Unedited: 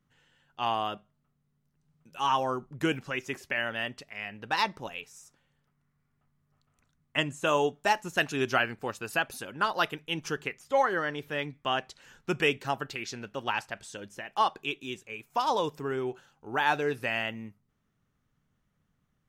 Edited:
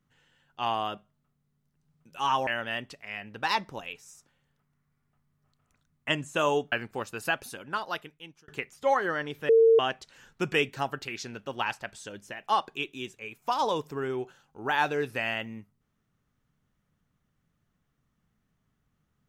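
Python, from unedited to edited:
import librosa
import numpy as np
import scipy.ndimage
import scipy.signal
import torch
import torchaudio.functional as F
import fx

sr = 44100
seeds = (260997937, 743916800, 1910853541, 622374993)

y = fx.edit(x, sr, fx.cut(start_s=2.47, length_s=1.08),
    fx.cut(start_s=7.8, length_s=0.8),
    fx.fade_out_span(start_s=9.22, length_s=1.14),
    fx.bleep(start_s=11.37, length_s=0.3, hz=453.0, db=-15.0), tone=tone)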